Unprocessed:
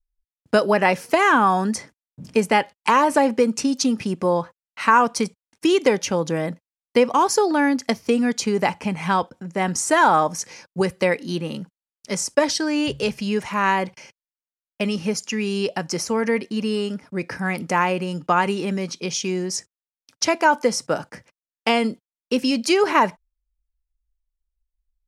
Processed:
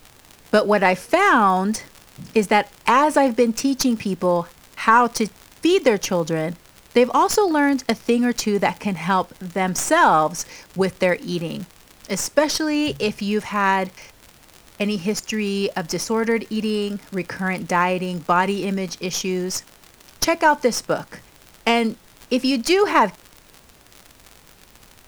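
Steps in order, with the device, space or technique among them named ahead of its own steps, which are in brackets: record under a worn stylus (tracing distortion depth 0.031 ms; crackle 81 per s -29 dBFS; pink noise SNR 30 dB); trim +1 dB

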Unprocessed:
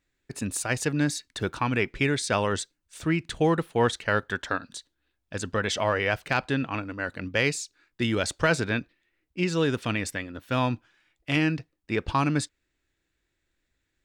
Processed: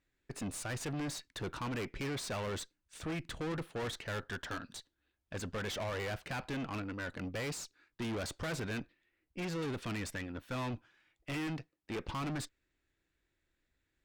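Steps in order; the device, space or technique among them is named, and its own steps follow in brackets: 11.47–12.08 s: high-pass 160 Hz 6 dB/octave; tube preamp driven hard (valve stage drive 34 dB, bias 0.5; treble shelf 4.1 kHz -5.5 dB); trim -1 dB

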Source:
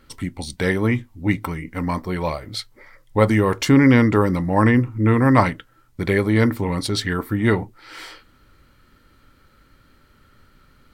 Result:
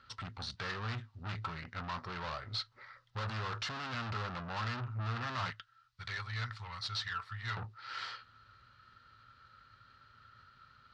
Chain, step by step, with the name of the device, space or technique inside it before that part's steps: 5.50–7.57 s: amplifier tone stack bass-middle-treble 10-0-10; scooped metal amplifier (valve stage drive 32 dB, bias 0.65; cabinet simulation 100–4300 Hz, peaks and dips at 110 Hz +9 dB, 250 Hz +8 dB, 370 Hz +5 dB, 1.3 kHz +7 dB, 2.2 kHz -9 dB, 3.2 kHz -5 dB; amplifier tone stack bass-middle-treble 10-0-10); trim +5.5 dB

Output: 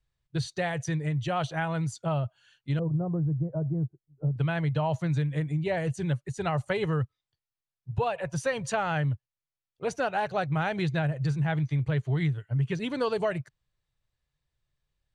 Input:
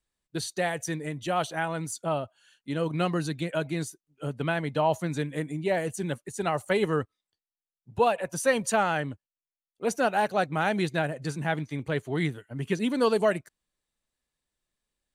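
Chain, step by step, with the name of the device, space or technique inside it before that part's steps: jukebox (low-pass 5.4 kHz 12 dB/octave; resonant low shelf 170 Hz +8.5 dB, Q 3; compression 4:1, threshold -24 dBFS, peak gain reduction 7 dB); 2.79–4.36 s: Bessel low-pass 570 Hz, order 6

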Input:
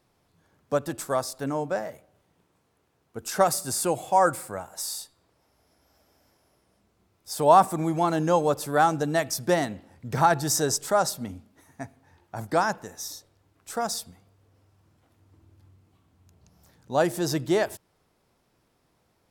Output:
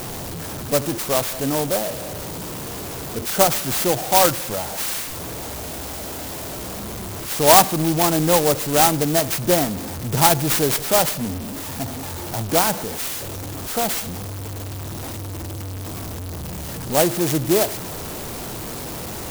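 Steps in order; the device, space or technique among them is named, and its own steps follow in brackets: early CD player with a faulty converter (jump at every zero crossing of -28.5 dBFS; sampling jitter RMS 0.14 ms); trim +4 dB

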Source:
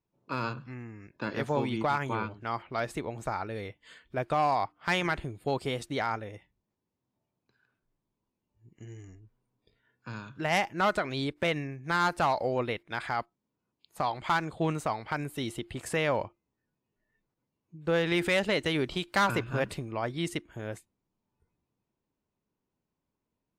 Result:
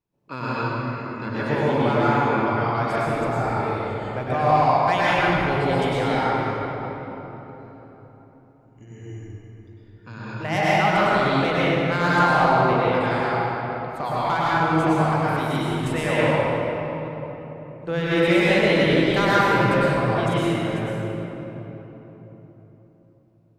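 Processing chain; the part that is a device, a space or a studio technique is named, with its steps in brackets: swimming-pool hall (reverberation RT60 3.9 s, pre-delay 94 ms, DRR -9.5 dB; treble shelf 5.2 kHz -4.5 dB)

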